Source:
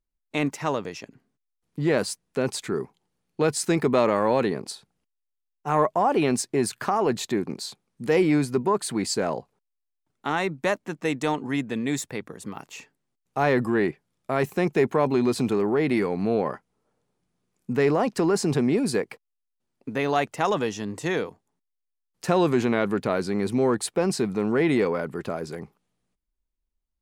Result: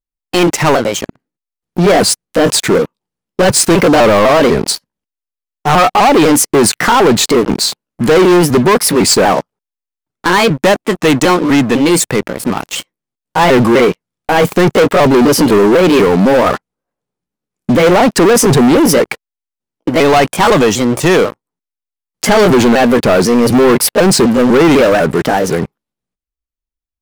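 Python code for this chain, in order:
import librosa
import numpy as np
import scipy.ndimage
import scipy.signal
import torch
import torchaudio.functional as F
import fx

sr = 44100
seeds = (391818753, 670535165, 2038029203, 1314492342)

y = fx.pitch_trill(x, sr, semitones=3.0, every_ms=250)
y = fx.leveller(y, sr, passes=5)
y = y * 10.0 ** (4.0 / 20.0)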